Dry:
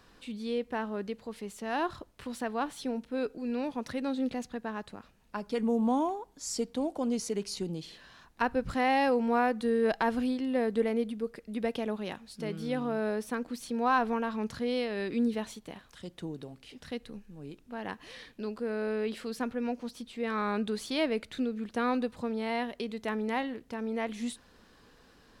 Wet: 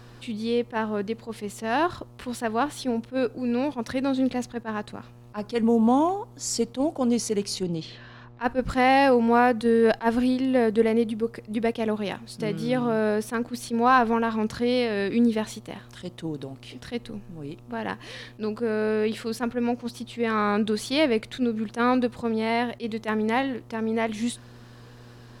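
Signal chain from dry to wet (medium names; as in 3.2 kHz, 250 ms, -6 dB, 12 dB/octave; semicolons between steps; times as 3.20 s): 7.63–8.58 s: level-controlled noise filter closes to 2.8 kHz, open at -26 dBFS; mains buzz 120 Hz, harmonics 11, -56 dBFS -8 dB/octave; attacks held to a fixed rise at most 340 dB/s; trim +7.5 dB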